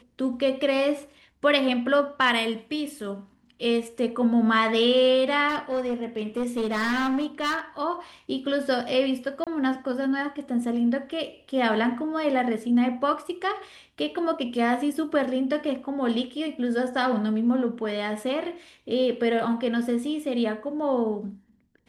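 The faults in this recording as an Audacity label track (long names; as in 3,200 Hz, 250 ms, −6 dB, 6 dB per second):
5.480000	7.600000	clipping −22 dBFS
9.440000	9.470000	drop-out 27 ms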